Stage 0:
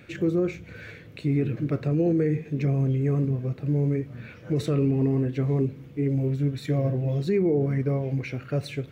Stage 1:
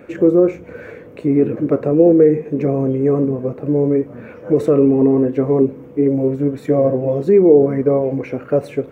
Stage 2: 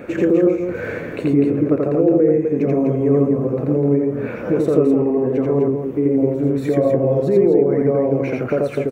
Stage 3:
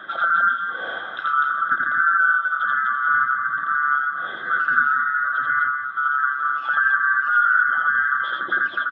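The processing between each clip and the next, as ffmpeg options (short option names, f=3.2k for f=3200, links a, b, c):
-af "equalizer=f=125:t=o:w=1:g=-5,equalizer=f=250:t=o:w=1:g=7,equalizer=f=500:t=o:w=1:g=12,equalizer=f=1k:t=o:w=1:g=9,equalizer=f=4k:t=o:w=1:g=-10,volume=2dB"
-filter_complex "[0:a]acompressor=threshold=-28dB:ratio=2.5,asplit=2[a][b];[b]aecho=0:1:84.55|250.7:0.891|0.501[c];[a][c]amix=inputs=2:normalize=0,volume=6.5dB"
-af "afftfilt=real='real(if(lt(b,960),b+48*(1-2*mod(floor(b/48),2)),b),0)':imag='imag(if(lt(b,960),b+48*(1-2*mod(floor(b/48),2)),b),0)':win_size=2048:overlap=0.75,highpass=190,equalizer=f=250:t=q:w=4:g=-5,equalizer=f=440:t=q:w=4:g=-9,equalizer=f=1.3k:t=q:w=4:g=-6,lowpass=f=3.5k:w=0.5412,lowpass=f=3.5k:w=1.3066"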